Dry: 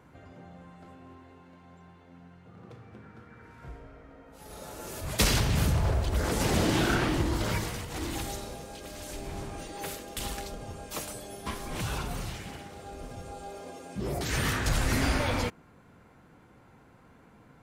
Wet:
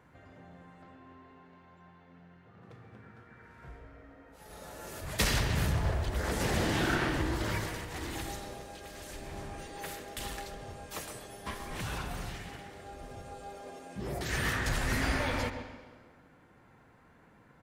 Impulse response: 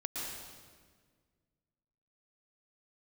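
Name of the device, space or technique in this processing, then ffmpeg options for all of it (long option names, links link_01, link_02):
filtered reverb send: -filter_complex "[0:a]asplit=2[link_01][link_02];[link_02]highpass=frequency=270:width=0.5412,highpass=frequency=270:width=1.3066,lowpass=4900[link_03];[1:a]atrim=start_sample=2205[link_04];[link_03][link_04]afir=irnorm=-1:irlink=0,volume=-11dB[link_05];[link_01][link_05]amix=inputs=2:normalize=0,asettb=1/sr,asplit=3[link_06][link_07][link_08];[link_06]atrim=end=0.824[link_09];[link_07]atrim=start=0.82:end=2.62,asetpts=PTS-STARTPTS,afade=type=in:duration=0.004:curve=qsin,afade=type=out:start_time=1.796:duration=0.004:curve=qsin,lowpass=5600[link_10];[link_08]atrim=start=2.616[link_11];[link_09][link_10]acrossfade=duration=0.004:curve1=hsin:curve2=qsin[link_12];[link_12][link_11]acrossfade=duration=0.004:curve1=qsin:curve2=hsin,equalizer=frequency=1800:width=5.6:gain=5.5,asplit=2[link_13][link_14];[link_14]adelay=133,lowpass=frequency=1600:poles=1,volume=-9dB,asplit=2[link_15][link_16];[link_16]adelay=133,lowpass=frequency=1600:poles=1,volume=0.41,asplit=2[link_17][link_18];[link_18]adelay=133,lowpass=frequency=1600:poles=1,volume=0.41,asplit=2[link_19][link_20];[link_20]adelay=133,lowpass=frequency=1600:poles=1,volume=0.41,asplit=2[link_21][link_22];[link_22]adelay=133,lowpass=frequency=1600:poles=1,volume=0.41[link_23];[link_13][link_15][link_17][link_19][link_21][link_23]amix=inputs=6:normalize=0,volume=-5dB"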